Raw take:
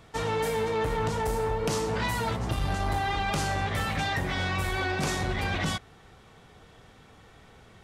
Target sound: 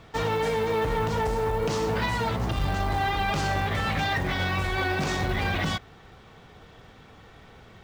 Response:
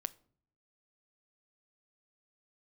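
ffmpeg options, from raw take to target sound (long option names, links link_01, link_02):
-af "alimiter=limit=-20.5dB:level=0:latency=1:release=48,lowpass=5600,acrusher=bits=7:mode=log:mix=0:aa=0.000001,volume=3.5dB"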